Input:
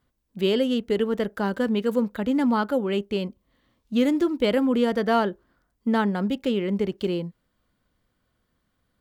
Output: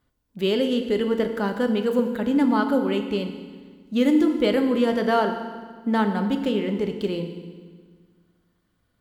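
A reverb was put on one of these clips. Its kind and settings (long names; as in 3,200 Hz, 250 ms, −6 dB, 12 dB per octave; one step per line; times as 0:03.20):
feedback delay network reverb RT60 1.6 s, low-frequency decay 1.3×, high-frequency decay 0.9×, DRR 5.5 dB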